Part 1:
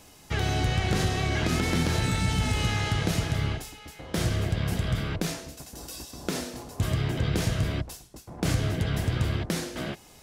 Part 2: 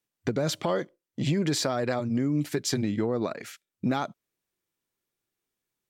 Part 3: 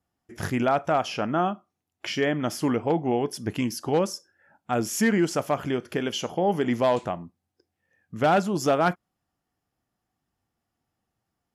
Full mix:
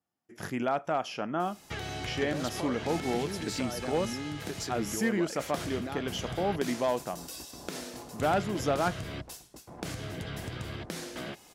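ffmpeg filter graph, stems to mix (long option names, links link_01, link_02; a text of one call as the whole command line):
ffmpeg -i stem1.wav -i stem2.wav -i stem3.wav -filter_complex "[0:a]adelay=1400,volume=-2dB[link_01];[1:a]adelay=1950,volume=0.5dB[link_02];[2:a]highpass=140,volume=-6.5dB[link_03];[link_01][link_02]amix=inputs=2:normalize=0,lowshelf=frequency=140:gain=-10.5,acompressor=threshold=-34dB:ratio=6,volume=0dB[link_04];[link_03][link_04]amix=inputs=2:normalize=0" out.wav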